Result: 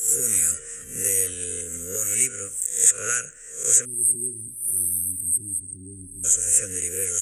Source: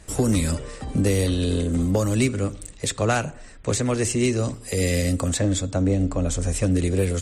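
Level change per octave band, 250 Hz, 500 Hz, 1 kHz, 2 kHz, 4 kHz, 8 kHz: −21.0, −12.5, −11.5, −4.0, −11.0, +12.0 decibels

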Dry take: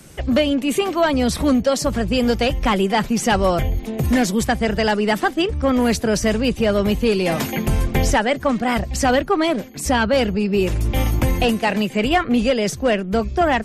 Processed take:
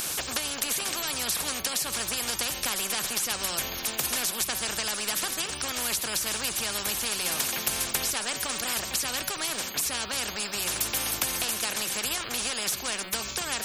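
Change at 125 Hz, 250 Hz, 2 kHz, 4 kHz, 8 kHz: −22.0, −23.5, −8.0, −1.5, +4.5 decibels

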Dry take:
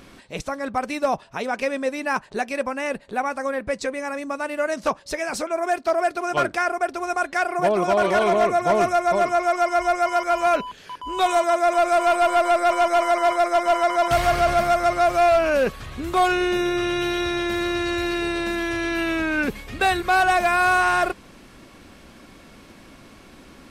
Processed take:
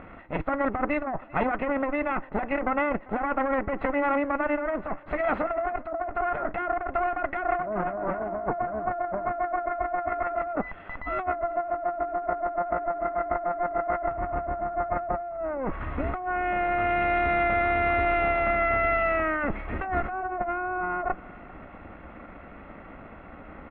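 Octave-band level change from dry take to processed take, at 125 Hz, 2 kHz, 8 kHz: −1.5 dB, −6.0 dB, below −40 dB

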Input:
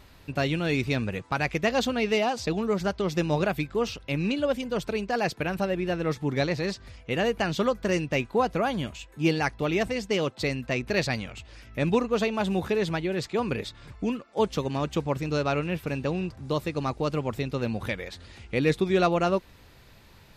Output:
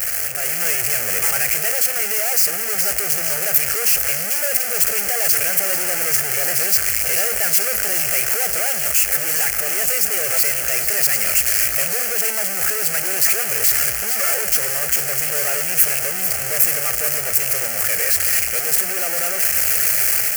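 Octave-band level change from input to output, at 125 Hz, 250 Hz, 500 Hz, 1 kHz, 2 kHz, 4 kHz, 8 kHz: −8.5, −13.5, −3.0, 0.0, +9.0, +9.5, +28.5 decibels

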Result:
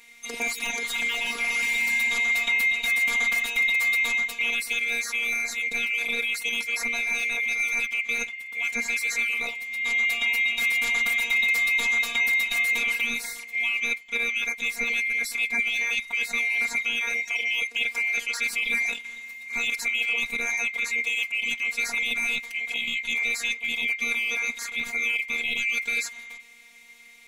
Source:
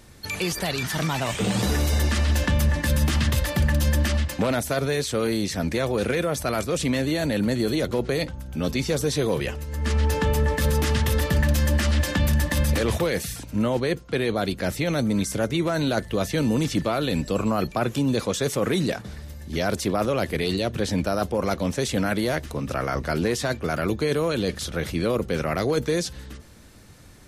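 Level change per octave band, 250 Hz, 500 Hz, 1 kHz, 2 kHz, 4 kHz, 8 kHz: −21.0, −19.5, −10.5, +10.5, +1.5, −1.5 decibels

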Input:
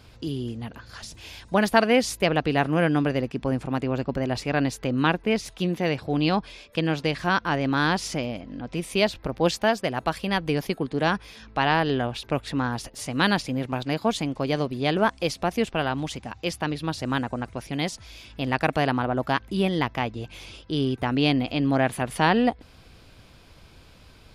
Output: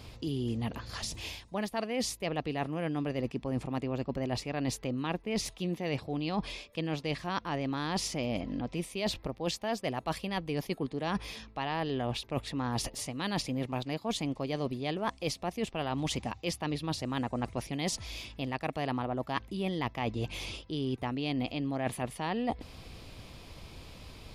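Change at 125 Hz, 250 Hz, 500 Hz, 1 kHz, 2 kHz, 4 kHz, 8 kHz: −7.5, −8.5, −9.5, −10.0, −12.5, −7.0, −2.5 decibels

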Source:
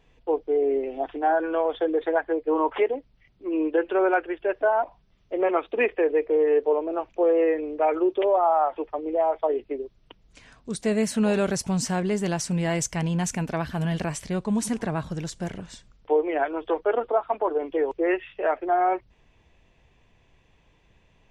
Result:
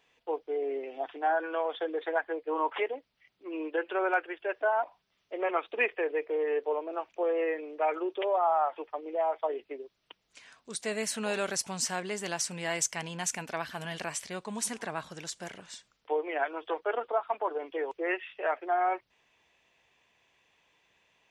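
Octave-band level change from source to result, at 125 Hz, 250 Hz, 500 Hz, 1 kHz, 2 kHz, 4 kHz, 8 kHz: −17.0, −13.0, −8.0, −5.0, −1.5, −0.5, 0.0 decibels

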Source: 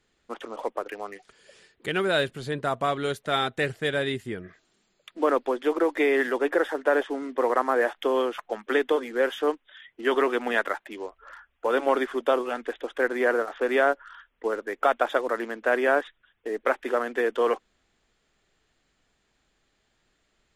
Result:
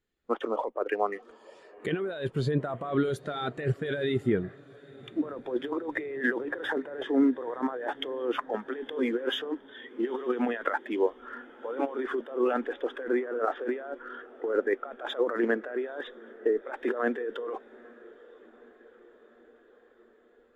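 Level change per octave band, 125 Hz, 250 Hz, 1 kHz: +4.5, +1.0, −7.5 decibels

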